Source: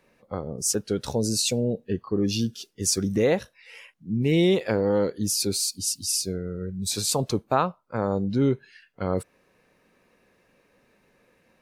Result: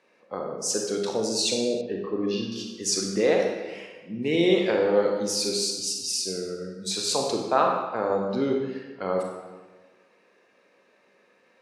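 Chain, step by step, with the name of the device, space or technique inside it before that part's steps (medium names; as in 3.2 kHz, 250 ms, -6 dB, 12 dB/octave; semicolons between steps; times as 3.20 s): supermarket ceiling speaker (band-pass 320–6700 Hz; reverberation RT60 1.4 s, pre-delay 27 ms, DRR 0.5 dB); 1.81–2.52 s: distance through air 220 m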